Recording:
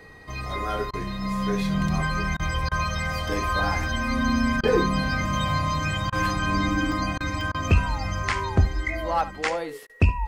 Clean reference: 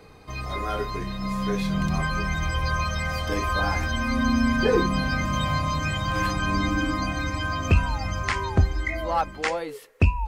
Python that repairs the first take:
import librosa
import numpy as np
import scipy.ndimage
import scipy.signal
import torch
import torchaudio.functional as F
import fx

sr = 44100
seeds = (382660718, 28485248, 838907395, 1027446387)

y = fx.notch(x, sr, hz=1900.0, q=30.0)
y = fx.fix_interpolate(y, sr, at_s=(4.68, 6.12, 6.92, 7.41, 9.83), length_ms=1.4)
y = fx.fix_interpolate(y, sr, at_s=(0.91, 2.37, 2.69, 4.61, 6.1, 7.18, 7.52, 9.87), length_ms=23.0)
y = fx.fix_echo_inverse(y, sr, delay_ms=71, level_db=-15.5)